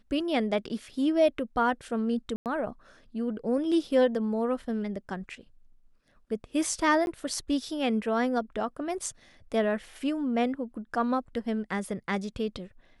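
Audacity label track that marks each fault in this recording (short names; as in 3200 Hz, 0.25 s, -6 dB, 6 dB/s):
2.360000	2.460000	gap 98 ms
7.060000	7.070000	gap 11 ms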